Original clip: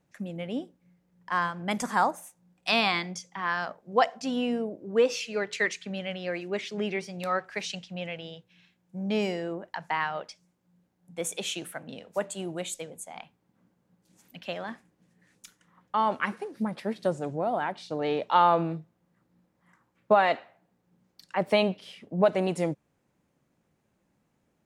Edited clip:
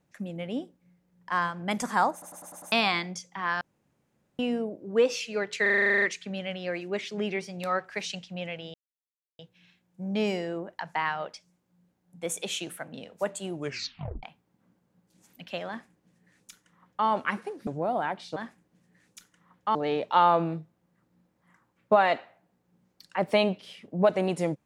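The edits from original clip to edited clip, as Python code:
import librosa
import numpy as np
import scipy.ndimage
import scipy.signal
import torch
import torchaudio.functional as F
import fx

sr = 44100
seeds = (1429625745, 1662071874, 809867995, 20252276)

y = fx.edit(x, sr, fx.stutter_over(start_s=2.12, slice_s=0.1, count=6),
    fx.room_tone_fill(start_s=3.61, length_s=0.78),
    fx.stutter(start_s=5.62, slice_s=0.04, count=11),
    fx.insert_silence(at_s=8.34, length_s=0.65),
    fx.tape_stop(start_s=12.49, length_s=0.69),
    fx.duplicate(start_s=14.63, length_s=1.39, to_s=17.94),
    fx.cut(start_s=16.62, length_s=0.63), tone=tone)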